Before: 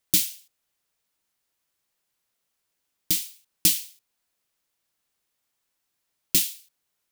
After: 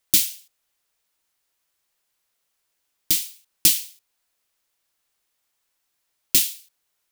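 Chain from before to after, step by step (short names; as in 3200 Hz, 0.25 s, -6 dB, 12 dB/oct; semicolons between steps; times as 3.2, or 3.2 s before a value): bell 170 Hz -6 dB 2.2 oct; gain +3.5 dB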